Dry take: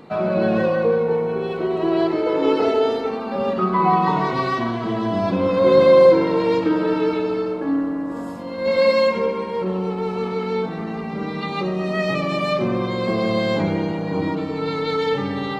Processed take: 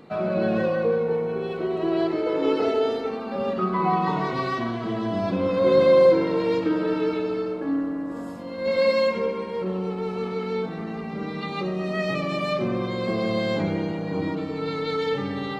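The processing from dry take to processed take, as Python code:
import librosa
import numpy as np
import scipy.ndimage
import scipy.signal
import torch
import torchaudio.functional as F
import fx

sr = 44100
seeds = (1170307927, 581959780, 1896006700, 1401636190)

y = fx.peak_eq(x, sr, hz=930.0, db=-4.0, octaves=0.36)
y = y * 10.0 ** (-4.0 / 20.0)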